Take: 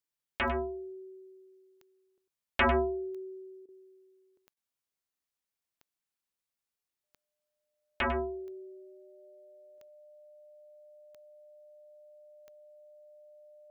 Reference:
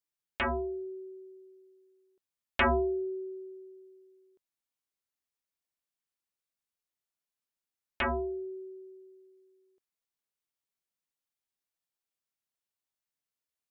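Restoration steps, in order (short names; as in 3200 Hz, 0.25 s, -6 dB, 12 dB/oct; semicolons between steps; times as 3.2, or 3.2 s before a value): de-click; notch 600 Hz, Q 30; interpolate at 3.66/4.54, 25 ms; inverse comb 99 ms -11 dB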